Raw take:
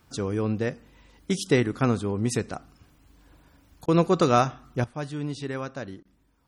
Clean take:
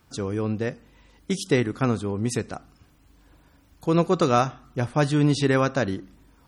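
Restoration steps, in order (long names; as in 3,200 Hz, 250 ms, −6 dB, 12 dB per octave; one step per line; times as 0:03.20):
repair the gap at 0:03.86/0:06.03, 21 ms
level 0 dB, from 0:04.84 +11.5 dB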